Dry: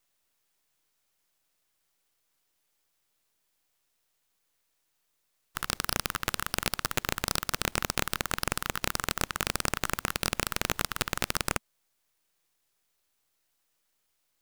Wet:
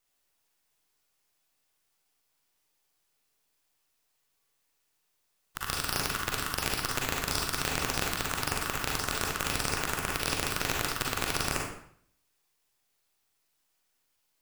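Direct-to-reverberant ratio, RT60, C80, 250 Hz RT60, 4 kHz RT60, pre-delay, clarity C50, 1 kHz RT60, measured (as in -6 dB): -2.0 dB, 0.60 s, 6.0 dB, 0.65 s, 0.55 s, 37 ms, 1.0 dB, 0.65 s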